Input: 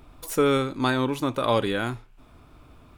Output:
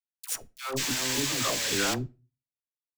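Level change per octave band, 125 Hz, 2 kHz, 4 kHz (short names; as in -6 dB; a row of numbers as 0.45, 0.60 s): -7.0, -0.5, +4.0 dB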